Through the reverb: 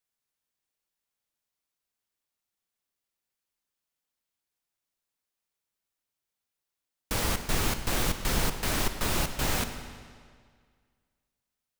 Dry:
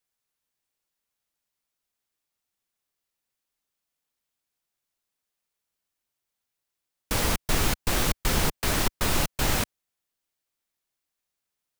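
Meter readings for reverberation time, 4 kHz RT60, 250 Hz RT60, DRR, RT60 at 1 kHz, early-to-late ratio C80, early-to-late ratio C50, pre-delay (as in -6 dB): 1.9 s, 1.7 s, 1.9 s, 8.0 dB, 1.9 s, 10.0 dB, 8.5 dB, 36 ms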